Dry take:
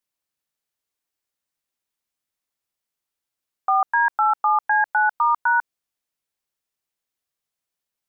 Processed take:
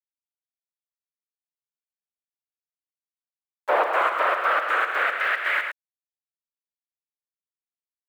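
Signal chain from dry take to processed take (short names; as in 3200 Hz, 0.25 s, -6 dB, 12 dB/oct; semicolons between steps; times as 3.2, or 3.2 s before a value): bin magnitudes rounded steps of 15 dB; noise vocoder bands 4; EQ curve 370 Hz 0 dB, 600 Hz +4 dB, 890 Hz -14 dB, 1300 Hz -9 dB, 2400 Hz -20 dB; sample gate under -46 dBFS; on a send: echo 0.107 s -8 dB; on the sum: high-pass sweep 590 Hz -> 1800 Hz, 2.69–5.45; in parallel at 0 dB: limiter -24.5 dBFS, peak gain reduction 10 dB; on the sum: gain +2 dB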